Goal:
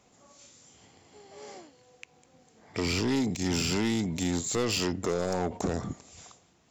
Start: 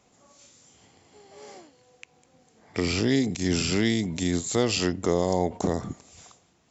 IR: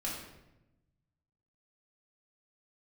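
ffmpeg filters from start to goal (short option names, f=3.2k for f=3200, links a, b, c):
-af "asoftclip=type=tanh:threshold=-22dB"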